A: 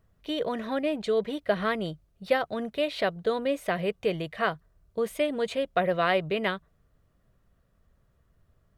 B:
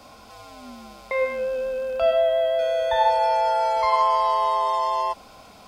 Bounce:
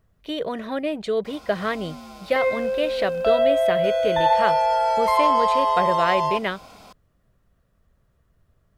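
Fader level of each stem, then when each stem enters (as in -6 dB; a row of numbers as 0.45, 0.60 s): +2.0, +1.0 dB; 0.00, 1.25 s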